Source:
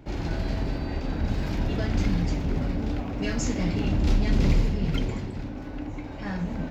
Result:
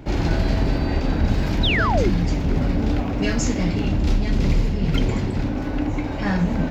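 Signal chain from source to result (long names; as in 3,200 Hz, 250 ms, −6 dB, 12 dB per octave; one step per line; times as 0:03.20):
speech leveller within 5 dB 0.5 s
sound drawn into the spectrogram fall, 0:01.63–0:02.10, 310–4,100 Hz −28 dBFS
level +6 dB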